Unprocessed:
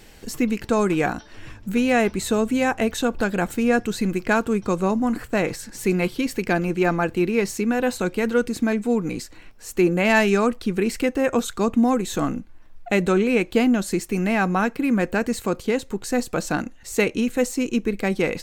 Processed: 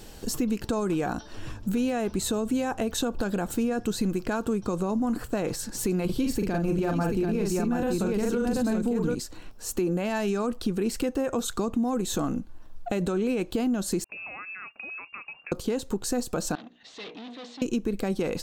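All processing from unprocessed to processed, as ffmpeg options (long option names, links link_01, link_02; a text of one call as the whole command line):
ffmpeg -i in.wav -filter_complex "[0:a]asettb=1/sr,asplit=3[link_01][link_02][link_03];[link_01]atrim=end=6.054[link_04];[link_02]atrim=start=6.05:end=9.15,asetpts=PTS-STARTPTS,afade=type=in:duration=0.004:curve=qsin,afade=type=out:start_time=3.096:duration=0.004:curve=qsin,lowshelf=frequency=170:gain=11,aecho=1:1:42|734:0.631|0.668,atrim=end_sample=136710[link_05];[link_03]atrim=start=9.146[link_06];[link_04][link_05]acrossfade=duration=0.004:curve1=hsin:curve2=qsin[link_07];[link_07][link_06]acrossfade=duration=0.004:curve1=qsin:curve2=hsin,asettb=1/sr,asplit=3[link_08][link_09][link_10];[link_08]atrim=end=14.044[link_11];[link_09]atrim=start=14.04:end=15.52,asetpts=PTS-STARTPTS,afade=type=in:duration=0.004:curve=qsin,afade=type=out:start_time=1.476:duration=0.004:curve=qsin,agate=range=-17dB:threshold=-30dB:ratio=16:release=100:detection=peak,acompressor=threshold=-33dB:ratio=12:attack=3.2:release=140:knee=1:detection=peak,lowpass=frequency=2400:width_type=q:width=0.5098,lowpass=frequency=2400:width_type=q:width=0.6013,lowpass=frequency=2400:width_type=q:width=0.9,lowpass=frequency=2400:width_type=q:width=2.563,afreqshift=-2800[link_12];[link_10]atrim=start=15.516[link_13];[link_11][link_12]acrossfade=duration=0.004:curve1=hsin:curve2=qsin[link_14];[link_14][link_13]acrossfade=duration=0.004:curve1=qsin:curve2=hsin,asettb=1/sr,asplit=3[link_15][link_16][link_17];[link_15]atrim=end=16.554[link_18];[link_16]atrim=start=16.55:end=17.62,asetpts=PTS-STARTPTS,afade=type=in:duration=0.004:curve=qsin,afade=type=out:start_time=1.066:duration=0.004:curve=qsin,bandreject=frequency=60:width_type=h:width=6,bandreject=frequency=120:width_type=h:width=6,bandreject=frequency=180:width_type=h:width=6,bandreject=frequency=240:width_type=h:width=6,bandreject=frequency=300:width_type=h:width=6,bandreject=frequency=360:width_type=h:width=6,bandreject=frequency=420:width_type=h:width=6,bandreject=frequency=480:width_type=h:width=6,aeval=exprs='(tanh(56.2*val(0)+0.25)-tanh(0.25))/56.2':channel_layout=same,highpass=340,equalizer=frequency=360:width_type=q:width=4:gain=-8,equalizer=frequency=530:width_type=q:width=4:gain=-7,equalizer=frequency=920:width_type=q:width=4:gain=-7,equalizer=frequency=1400:width_type=q:width=4:gain=-8,equalizer=frequency=2000:width_type=q:width=4:gain=4,equalizer=frequency=3700:width_type=q:width=4:gain=7,lowpass=frequency=4100:width=0.5412,lowpass=frequency=4100:width=1.3066[link_19];[link_17]atrim=start=17.616[link_20];[link_18][link_19]acrossfade=duration=0.004:curve1=hsin:curve2=qsin[link_21];[link_21][link_20]acrossfade=duration=0.004:curve1=qsin:curve2=hsin,equalizer=frequency=2100:width=2.1:gain=-10.5,alimiter=limit=-15.5dB:level=0:latency=1:release=39,acompressor=threshold=-28dB:ratio=3,volume=3dB" out.wav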